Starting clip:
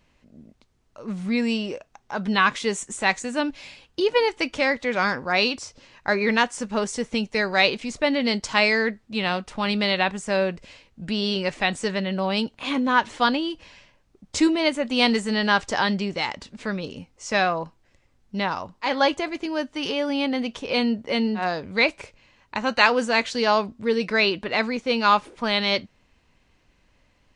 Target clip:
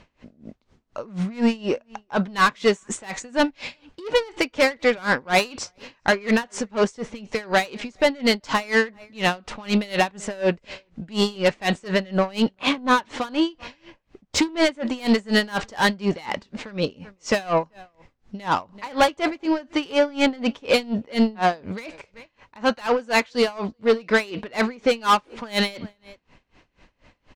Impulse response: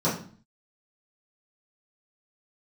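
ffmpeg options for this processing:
-filter_complex "[0:a]lowpass=6600,equalizer=frequency=760:width=0.31:gain=4,asplit=2[link_01][link_02];[link_02]alimiter=limit=-9dB:level=0:latency=1:release=258,volume=2dB[link_03];[link_01][link_03]amix=inputs=2:normalize=0,dynaudnorm=framelen=620:gausssize=5:maxgain=11.5dB,asoftclip=type=tanh:threshold=-14dB,asplit=2[link_04][link_05];[link_05]adelay=384.8,volume=-26dB,highshelf=frequency=4000:gain=-8.66[link_06];[link_04][link_06]amix=inputs=2:normalize=0,aeval=exprs='val(0)*pow(10,-25*(0.5-0.5*cos(2*PI*4.1*n/s))/20)':channel_layout=same,volume=3.5dB"

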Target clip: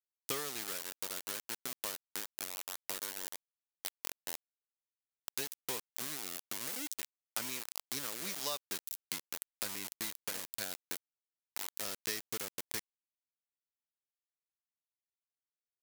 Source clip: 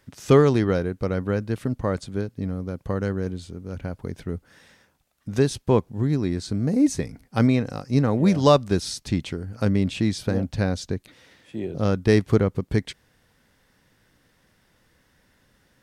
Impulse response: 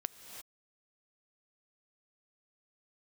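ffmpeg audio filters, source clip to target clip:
-af "aeval=exprs='val(0)*gte(abs(val(0)),0.075)':channel_layout=same,aderivative,acompressor=threshold=-40dB:ratio=6,volume=7dB"

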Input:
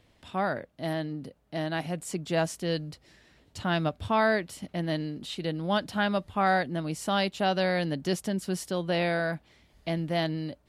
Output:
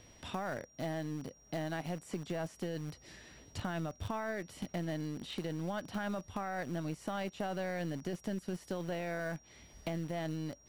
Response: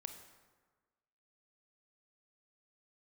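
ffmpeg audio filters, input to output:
-filter_complex "[0:a]acrossover=split=2700[link_01][link_02];[link_02]acompressor=threshold=-50dB:ratio=4:attack=1:release=60[link_03];[link_01][link_03]amix=inputs=2:normalize=0,asplit=2[link_04][link_05];[link_05]acrusher=bits=3:dc=4:mix=0:aa=0.000001,volume=-8dB[link_06];[link_04][link_06]amix=inputs=2:normalize=0,alimiter=limit=-20.5dB:level=0:latency=1:release=12,acompressor=threshold=-43dB:ratio=3,aeval=exprs='val(0)+0.000501*sin(2*PI*5700*n/s)':channel_layout=same,volume=4dB"

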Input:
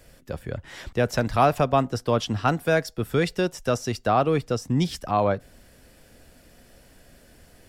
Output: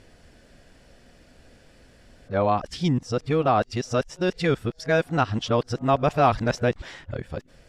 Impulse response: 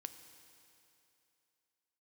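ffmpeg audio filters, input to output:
-af "areverse,lowpass=6400"

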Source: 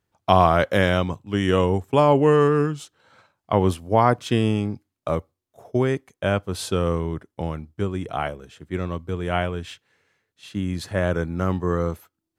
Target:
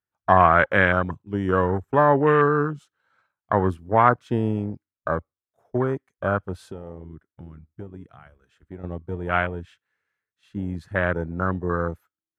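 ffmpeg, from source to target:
ffmpeg -i in.wav -filter_complex "[0:a]asettb=1/sr,asplit=3[link_01][link_02][link_03];[link_01]atrim=end=6.714[link_04];[link_02]atrim=start=6.71:end=8.84,asetpts=PTS-STARTPTS,afade=type=in:duration=0.004:curve=qsin,afade=type=out:start_time=2.126:duration=0.004:curve=qsin,acompressor=threshold=-34dB:ratio=3[link_05];[link_03]atrim=start=8.836[link_06];[link_04][link_05]acrossfade=duration=0.004:curve1=hsin:curve2=qsin[link_07];[link_07][link_06]acrossfade=duration=0.004:curve1=qsin:curve2=hsin,afwtdn=0.0447,equalizer=frequency=1500:width_type=o:width=1.1:gain=11,volume=-3dB" out.wav

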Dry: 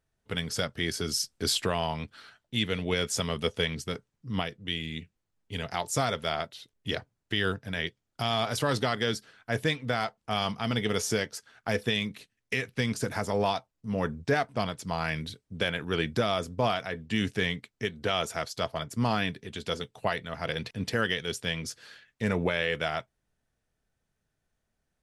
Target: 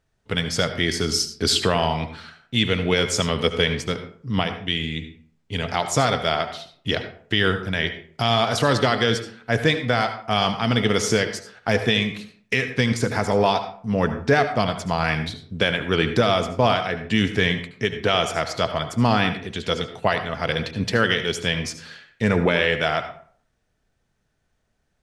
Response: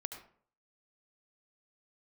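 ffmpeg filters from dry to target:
-filter_complex "[0:a]asplit=2[link_01][link_02];[1:a]atrim=start_sample=2205,lowpass=8900[link_03];[link_02][link_03]afir=irnorm=-1:irlink=0,volume=6.5dB[link_04];[link_01][link_04]amix=inputs=2:normalize=0"

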